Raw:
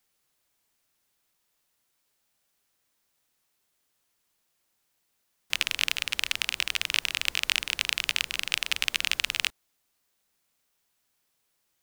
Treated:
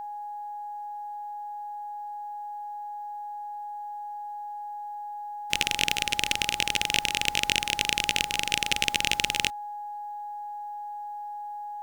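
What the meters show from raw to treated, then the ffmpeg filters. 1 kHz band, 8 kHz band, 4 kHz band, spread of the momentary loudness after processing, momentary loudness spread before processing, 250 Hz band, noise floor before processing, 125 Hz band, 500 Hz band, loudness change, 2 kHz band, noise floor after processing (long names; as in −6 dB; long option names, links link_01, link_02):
+16.5 dB, +4.0 dB, +1.5 dB, 13 LU, 3 LU, +13.0 dB, −75 dBFS, +11.0 dB, +10.0 dB, −2.0 dB, +1.0 dB, −37 dBFS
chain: -af "aeval=exprs='val(0)+0.0141*sin(2*PI*830*n/s)':channel_layout=same,asoftclip=type=tanh:threshold=-6.5dB,aeval=exprs='0.473*(cos(1*acos(clip(val(0)/0.473,-1,1)))-cos(1*PI/2))+0.075*(cos(2*acos(clip(val(0)/0.473,-1,1)))-cos(2*PI/2))+0.0237*(cos(6*acos(clip(val(0)/0.473,-1,1)))-cos(6*PI/2))':channel_layout=same,volume=3dB"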